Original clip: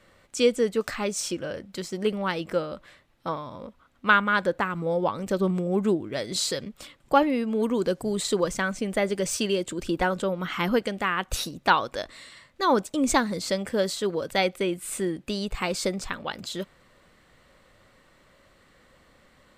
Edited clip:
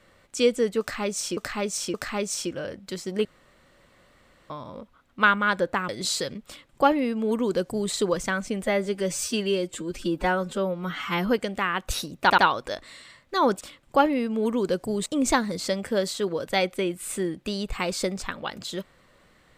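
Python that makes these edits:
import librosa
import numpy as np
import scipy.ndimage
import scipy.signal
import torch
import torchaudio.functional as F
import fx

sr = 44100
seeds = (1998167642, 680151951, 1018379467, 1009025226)

y = fx.edit(x, sr, fx.repeat(start_s=0.8, length_s=0.57, count=3),
    fx.room_tone_fill(start_s=2.11, length_s=1.25),
    fx.cut(start_s=4.75, length_s=1.45),
    fx.duplicate(start_s=6.78, length_s=1.45, to_s=12.88),
    fx.stretch_span(start_s=8.94, length_s=1.76, factor=1.5),
    fx.stutter(start_s=11.65, slice_s=0.08, count=3), tone=tone)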